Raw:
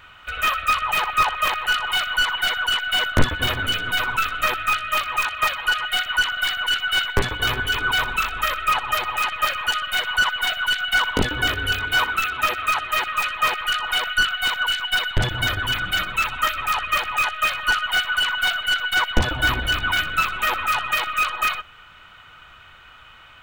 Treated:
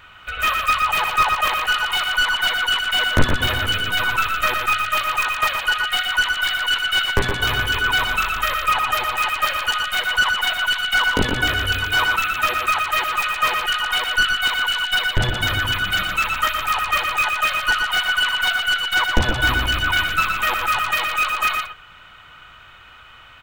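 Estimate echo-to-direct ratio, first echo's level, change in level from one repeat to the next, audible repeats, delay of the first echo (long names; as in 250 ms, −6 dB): −5.5 dB, −5.5 dB, repeats not evenly spaced, 1, 119 ms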